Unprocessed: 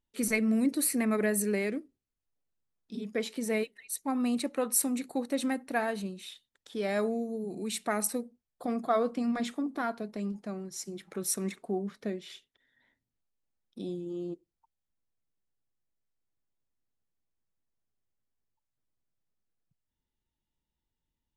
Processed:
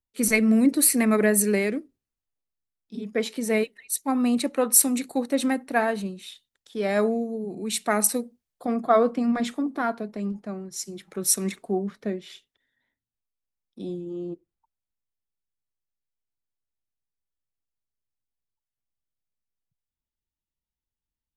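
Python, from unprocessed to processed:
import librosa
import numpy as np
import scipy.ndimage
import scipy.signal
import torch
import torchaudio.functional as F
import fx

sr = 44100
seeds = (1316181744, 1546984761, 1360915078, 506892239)

y = fx.band_widen(x, sr, depth_pct=40)
y = y * librosa.db_to_amplitude(6.5)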